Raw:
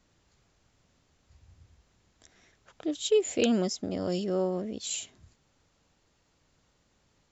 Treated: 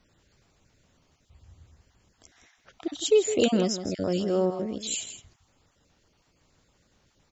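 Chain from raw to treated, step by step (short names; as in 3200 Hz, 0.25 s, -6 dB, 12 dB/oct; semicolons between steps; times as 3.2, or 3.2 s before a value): random spectral dropouts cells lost 21%; echo 0.162 s -11 dB; gain +3.5 dB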